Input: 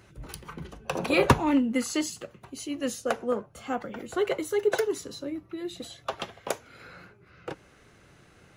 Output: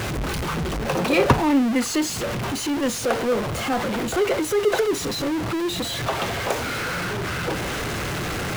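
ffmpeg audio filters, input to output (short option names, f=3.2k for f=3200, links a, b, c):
-af "aeval=exprs='val(0)+0.5*0.0794*sgn(val(0))':c=same,highshelf=f=5.2k:g=-7,volume=1.5dB"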